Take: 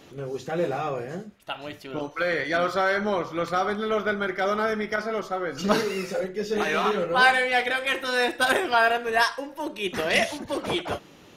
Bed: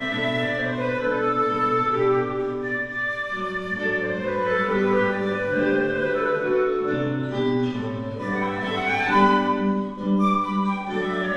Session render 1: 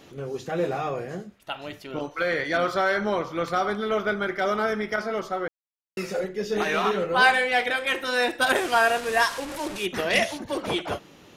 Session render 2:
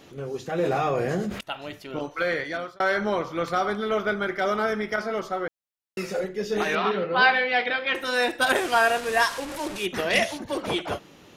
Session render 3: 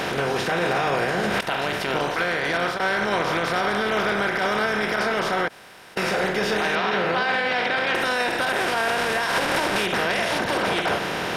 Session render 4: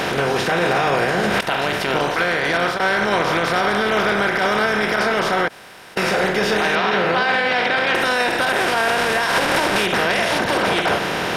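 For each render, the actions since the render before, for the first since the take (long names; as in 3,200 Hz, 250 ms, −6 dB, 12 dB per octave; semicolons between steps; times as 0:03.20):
0:05.48–0:05.97: silence; 0:08.55–0:09.86: linear delta modulator 64 kbit/s, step −28.5 dBFS
0:00.58–0:01.41: envelope flattener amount 70%; 0:02.29–0:02.80: fade out; 0:06.75–0:07.95: Chebyshev band-pass filter 100–4,800 Hz, order 4
compressor on every frequency bin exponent 0.4; brickwall limiter −14 dBFS, peak gain reduction 11.5 dB
level +4.5 dB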